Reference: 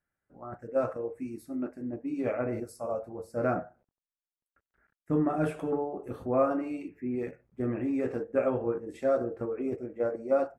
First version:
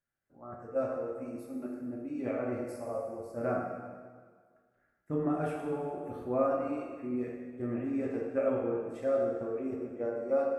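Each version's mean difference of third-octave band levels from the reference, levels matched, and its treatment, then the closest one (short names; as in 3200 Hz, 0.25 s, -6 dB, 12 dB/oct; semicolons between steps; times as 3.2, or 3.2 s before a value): 4.5 dB: plate-style reverb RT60 1.7 s, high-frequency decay 0.9×, DRR -0.5 dB; gain -6.5 dB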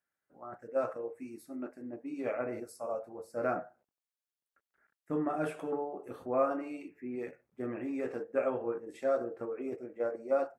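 2.5 dB: HPF 430 Hz 6 dB/oct; gain -1.5 dB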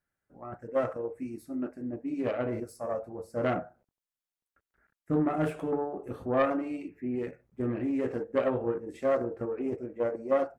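1.0 dB: self-modulated delay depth 0.19 ms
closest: third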